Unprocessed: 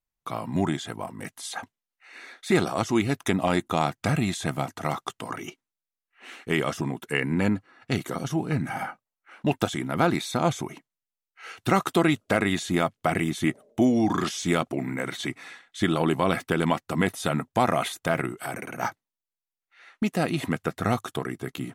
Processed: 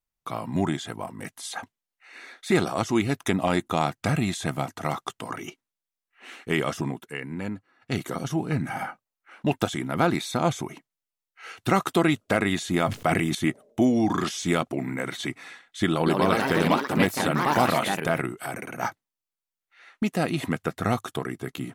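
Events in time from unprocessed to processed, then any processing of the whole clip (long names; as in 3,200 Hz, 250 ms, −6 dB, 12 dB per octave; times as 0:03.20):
0:06.90–0:07.99: duck −8.5 dB, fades 0.19 s
0:12.84–0:13.35: level that may fall only so fast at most 28 dB per second
0:15.91–0:18.43: delay with pitch and tempo change per echo 153 ms, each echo +3 semitones, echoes 3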